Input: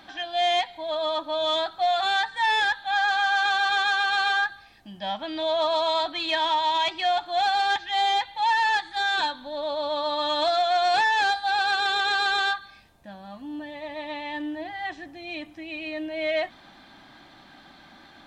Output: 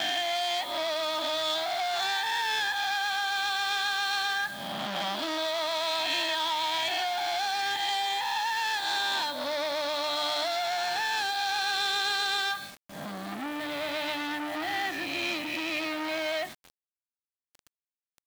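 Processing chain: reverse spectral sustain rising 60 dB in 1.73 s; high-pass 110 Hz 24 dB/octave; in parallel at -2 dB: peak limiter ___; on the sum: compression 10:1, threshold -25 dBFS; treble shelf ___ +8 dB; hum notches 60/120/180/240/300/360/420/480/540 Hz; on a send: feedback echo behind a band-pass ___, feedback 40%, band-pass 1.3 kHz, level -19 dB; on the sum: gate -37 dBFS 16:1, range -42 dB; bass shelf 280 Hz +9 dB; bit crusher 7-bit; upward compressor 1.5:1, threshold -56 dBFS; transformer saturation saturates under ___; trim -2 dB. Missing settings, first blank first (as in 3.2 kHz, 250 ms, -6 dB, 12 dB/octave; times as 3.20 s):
-16.5 dBFS, 3 kHz, 99 ms, 2.7 kHz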